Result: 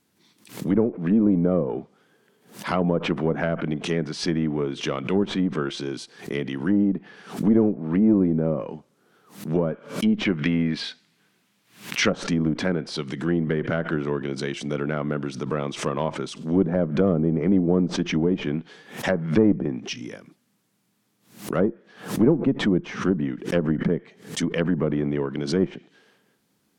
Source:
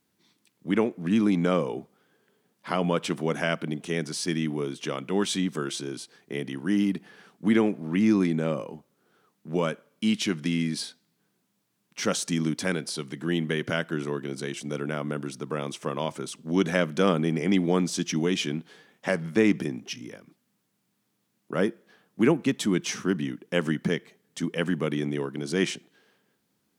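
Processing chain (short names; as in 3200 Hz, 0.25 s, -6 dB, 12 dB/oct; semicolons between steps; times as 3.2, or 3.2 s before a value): one diode to ground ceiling -16.5 dBFS; treble ducked by the level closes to 650 Hz, closed at -22 dBFS; 10.25–12.1 bell 2400 Hz +9.5 dB 2 oct; backwards sustainer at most 130 dB/s; gain +5 dB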